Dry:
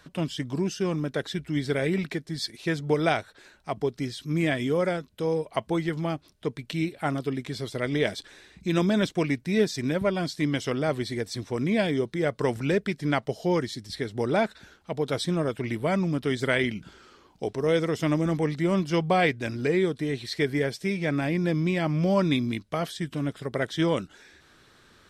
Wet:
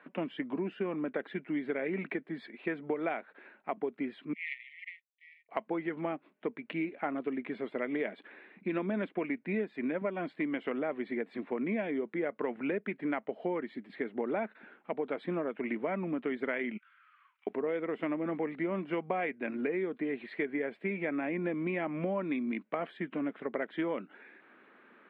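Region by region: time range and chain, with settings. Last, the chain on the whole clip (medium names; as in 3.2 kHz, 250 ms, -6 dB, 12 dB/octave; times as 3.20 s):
4.33–5.49 s: power-law waveshaper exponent 2 + brick-wall FIR high-pass 1.8 kHz
16.77–17.47 s: steep high-pass 1.1 kHz 72 dB/octave + compression, threshold -57 dBFS
whole clip: elliptic band-pass 220–2400 Hz, stop band 40 dB; compression, threshold -30 dBFS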